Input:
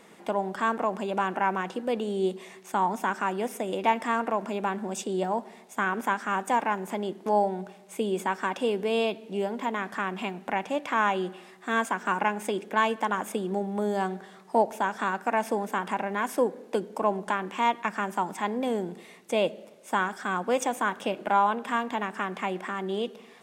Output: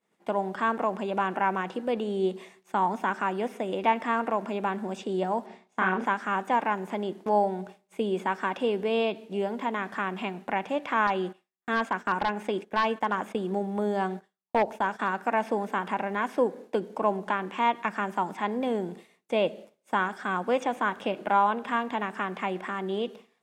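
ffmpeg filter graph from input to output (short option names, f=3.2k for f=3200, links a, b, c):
-filter_complex "[0:a]asettb=1/sr,asplit=3[a][b][c];[a]atrim=end=5.464[d];[b]atrim=start=5.46:end=6.06,asetpts=PTS-STARTPTS,afade=t=in:d=0.004:c=qsin,afade=t=out:st=0.596:d=0.004:c=qsin,lowpass=5k,asplit=2[e][f];[f]adelay=32,volume=-2.5dB[g];[e][g]amix=inputs=2:normalize=0,atrim=end_sample=26460[h];[c]atrim=start=6.056[i];[d][h]acrossfade=d=0.004:c1=hsin:c2=qsin[j];[j][i]acrossfade=d=0.004:c1=qsin:c2=hsin,asettb=1/sr,asplit=3[k][l][m];[k]atrim=end=11.074[n];[l]atrim=start=11.07:end=15.11,asetpts=PTS-STARTPTS,afade=t=in:d=0.004:c=qsin,afade=t=out:st=4.036:d=0.004:c=qsin,agate=range=-15dB:threshold=-41dB:ratio=16:release=100:detection=peak,aeval=exprs='0.178*(abs(mod(val(0)/0.178+3,4)-2)-1)':c=same[o];[m]atrim=start=15.106[p];[n][o]acrossfade=d=0.004:c1=hsin:c2=qsin[q];[q][p]acrossfade=d=0.004:c1=qsin:c2=hsin,agate=range=-33dB:threshold=-39dB:ratio=3:detection=peak,acrossover=split=4300[r][s];[s]acompressor=threshold=-59dB:ratio=4:attack=1:release=60[t];[r][t]amix=inputs=2:normalize=0,equalizer=f=61:t=o:w=0.41:g=10.5"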